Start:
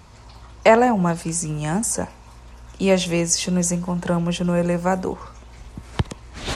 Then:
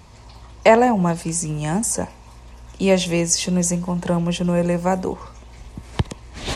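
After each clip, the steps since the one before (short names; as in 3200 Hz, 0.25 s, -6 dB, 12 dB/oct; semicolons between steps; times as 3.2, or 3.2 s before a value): bell 1400 Hz -8.5 dB 0.25 oct; gain +1 dB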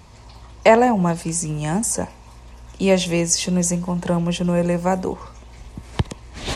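nothing audible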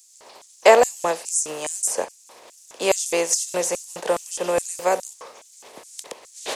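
spectral contrast lowered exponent 0.67; LFO high-pass square 2.4 Hz 490–7100 Hz; gain -4 dB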